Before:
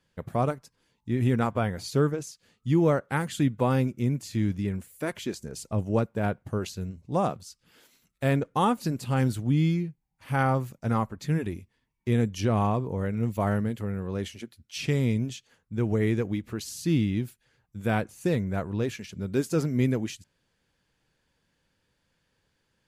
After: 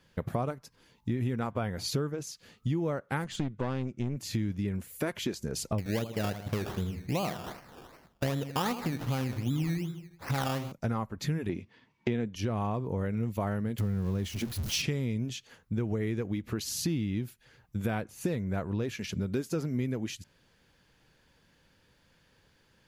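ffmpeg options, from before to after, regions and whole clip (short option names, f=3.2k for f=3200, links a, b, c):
-filter_complex "[0:a]asettb=1/sr,asplit=3[a][b][c];[a]atrim=end=3.244[d];[b]atrim=start=3.24:end=4.17,asetpts=PTS-STARTPTS,afade=t=in:d=0.004:c=qsin,afade=t=out:st=0.926:d=0.004:c=qsin,lowpass=f=8.1k:w=0.5412,lowpass=f=8.1k:w=1.3066,aeval=exprs='(tanh(12.6*val(0)+0.65)-tanh(0.65))/12.6':c=same[e];[c]atrim=start=4.166[f];[d][e]acrossfade=d=0.004:c1=hsin:c2=qsin[g];[g][f]acrossfade=d=0.004:c1=qsin:c2=hsin,asettb=1/sr,asplit=3[h][i][j];[h]atrim=end=5.784[k];[i]atrim=start=5.78:end=10.72,asetpts=PTS-STARTPTS,afade=t=in:d=0.004:c=qsin,afade=t=out:st=4.936:d=0.004:c=qsin,aecho=1:1:79|158|237|316:0.237|0.0972|0.0399|0.0163,atrim=end_sample=217854,acrusher=samples=17:mix=1:aa=0.000001:lfo=1:lforange=10.2:lforate=2.6[l];[j]atrim=start=10.716[m];[k][l]acrossfade=d=0.004:c1=hsin:c2=qsin[n];[n][m]acrossfade=d=0.004:c1=qsin:c2=hsin,asettb=1/sr,asplit=3[o][p][q];[o]atrim=end=11.494[r];[p]atrim=start=11.49:end=12.36,asetpts=PTS-STARTPTS,afade=t=in:d=0.004:c=qsin,afade=t=out:st=0.866:d=0.004:c=qsin,acontrast=80,highpass=150,lowpass=4.4k[s];[q]atrim=start=12.356[t];[r][s]acrossfade=d=0.004:c1=hsin:c2=qsin[u];[u][t]acrossfade=d=0.004:c1=qsin:c2=hsin,asettb=1/sr,asplit=3[v][w][x];[v]atrim=end=13.784[y];[w]atrim=start=13.78:end=14.82,asetpts=PTS-STARTPTS,afade=t=in:d=0.004:c=qsin,afade=t=out:st=1.036:d=0.004:c=qsin,aeval=exprs='val(0)+0.5*0.00891*sgn(val(0))':c=same,bass=f=250:g=9,treble=f=4k:g=5[z];[x]atrim=start=14.816[aa];[y][z]acrossfade=d=0.004:c1=hsin:c2=qsin[ab];[ab][aa]acrossfade=d=0.004:c1=qsin:c2=hsin,equalizer=f=8.4k:t=o:w=0.44:g=-5.5,acompressor=threshold=-37dB:ratio=6,volume=8dB"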